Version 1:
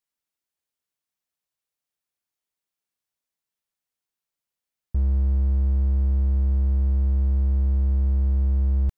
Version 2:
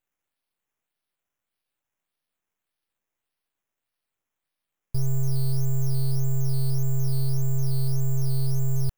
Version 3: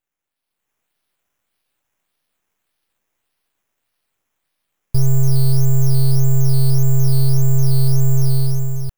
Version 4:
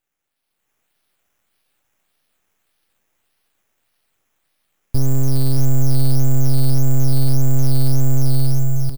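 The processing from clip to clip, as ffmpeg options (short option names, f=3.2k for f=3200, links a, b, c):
-af "acrusher=samples=8:mix=1:aa=0.000001:lfo=1:lforange=4.8:lforate=1.7,aeval=exprs='abs(val(0))':c=same,aemphasis=mode=production:type=50kf"
-af "dynaudnorm=f=110:g=11:m=11dB"
-filter_complex "[0:a]bandreject=f=1k:w=19,aeval=exprs='(tanh(2.51*val(0)+0.6)-tanh(0.6))/2.51':c=same,asplit=2[a][b];[b]aecho=0:1:632:0.266[c];[a][c]amix=inputs=2:normalize=0,volume=7.5dB"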